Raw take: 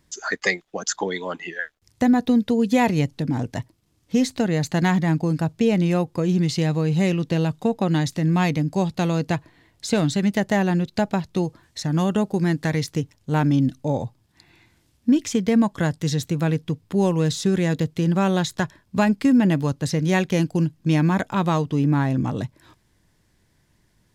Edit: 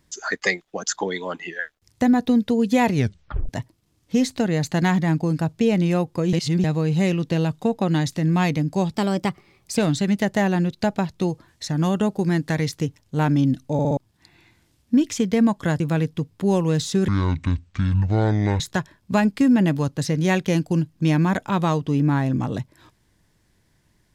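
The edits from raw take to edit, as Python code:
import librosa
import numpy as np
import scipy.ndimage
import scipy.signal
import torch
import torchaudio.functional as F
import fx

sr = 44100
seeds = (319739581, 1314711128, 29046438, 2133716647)

y = fx.edit(x, sr, fx.tape_stop(start_s=2.95, length_s=0.54),
    fx.reverse_span(start_s=6.33, length_s=0.31),
    fx.speed_span(start_s=8.94, length_s=0.98, speed=1.18),
    fx.stutter_over(start_s=13.88, slice_s=0.06, count=4),
    fx.cut(start_s=15.95, length_s=0.36),
    fx.speed_span(start_s=17.59, length_s=0.85, speed=0.56), tone=tone)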